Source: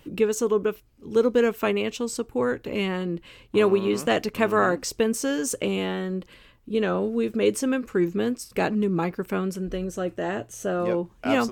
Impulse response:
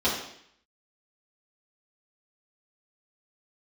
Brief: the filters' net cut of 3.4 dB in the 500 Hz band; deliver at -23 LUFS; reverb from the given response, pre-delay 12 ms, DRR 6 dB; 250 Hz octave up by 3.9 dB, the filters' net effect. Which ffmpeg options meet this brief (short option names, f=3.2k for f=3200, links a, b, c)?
-filter_complex "[0:a]equalizer=f=250:t=o:g=6.5,equalizer=f=500:t=o:g=-6.5,asplit=2[a][b];[1:a]atrim=start_sample=2205,adelay=12[c];[b][c]afir=irnorm=-1:irlink=0,volume=-19dB[d];[a][d]amix=inputs=2:normalize=0"